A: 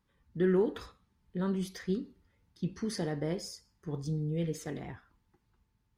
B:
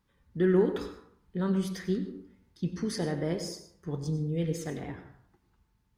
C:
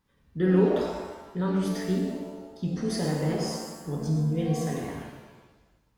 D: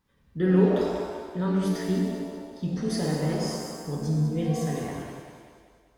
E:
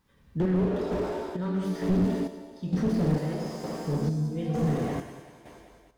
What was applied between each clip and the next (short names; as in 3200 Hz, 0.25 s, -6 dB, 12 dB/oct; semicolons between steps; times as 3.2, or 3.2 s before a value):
plate-style reverb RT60 0.64 s, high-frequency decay 0.5×, pre-delay 80 ms, DRR 9.5 dB; gain +2.5 dB
shimmer reverb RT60 1.1 s, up +7 st, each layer -8 dB, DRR 0 dB
split-band echo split 300 Hz, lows 0.102 s, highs 0.194 s, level -9 dB
chopper 1.1 Hz, depth 60%, duty 50%; slew limiter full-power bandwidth 14 Hz; gain +4 dB